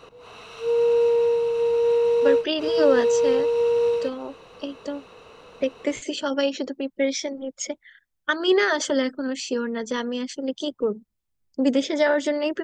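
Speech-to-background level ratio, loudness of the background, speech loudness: −4.0 dB, −21.5 LKFS, −25.5 LKFS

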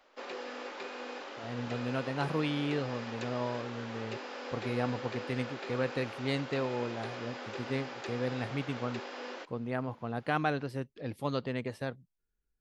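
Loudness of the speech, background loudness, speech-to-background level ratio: −36.0 LKFS, −42.0 LKFS, 6.0 dB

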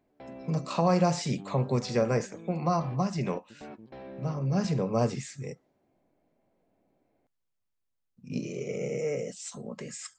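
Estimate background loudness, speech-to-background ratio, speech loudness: −46.5 LKFS, 16.0 dB, −30.5 LKFS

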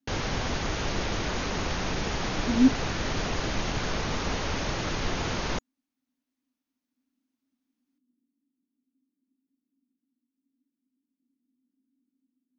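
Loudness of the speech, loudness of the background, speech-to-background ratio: −24.0 LKFS, −30.5 LKFS, 6.5 dB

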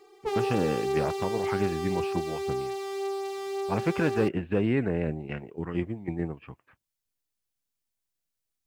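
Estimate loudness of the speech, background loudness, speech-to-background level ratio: −30.5 LKFS, −32.0 LKFS, 1.5 dB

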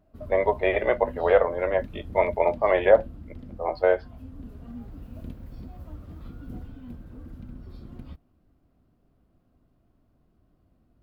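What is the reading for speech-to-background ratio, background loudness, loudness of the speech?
19.0 dB, −42.5 LKFS, −23.5 LKFS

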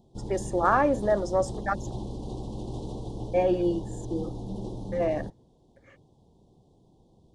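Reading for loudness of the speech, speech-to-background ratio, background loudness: −27.5 LKFS, 10.0 dB, −37.5 LKFS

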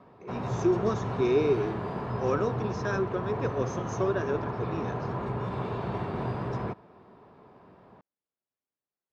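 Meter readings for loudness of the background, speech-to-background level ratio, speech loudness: −33.5 LKFS, 3.0 dB, −30.5 LKFS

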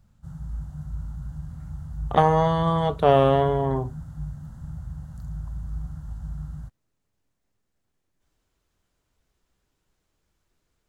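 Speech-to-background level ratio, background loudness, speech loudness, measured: 16.0 dB, −37.0 LKFS, −21.0 LKFS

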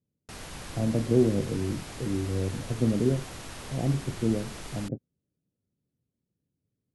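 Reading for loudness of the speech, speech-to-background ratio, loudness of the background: −29.0 LKFS, 12.5 dB, −41.5 LKFS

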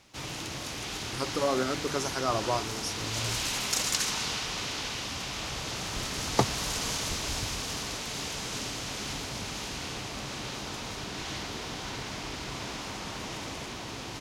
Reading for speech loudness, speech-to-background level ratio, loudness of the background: −32.5 LKFS, 0.5 dB, −33.0 LKFS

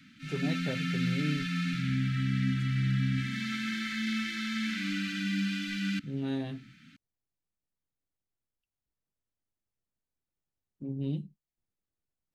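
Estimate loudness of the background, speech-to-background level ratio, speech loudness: −31.5 LKFS, −5.0 dB, −36.5 LKFS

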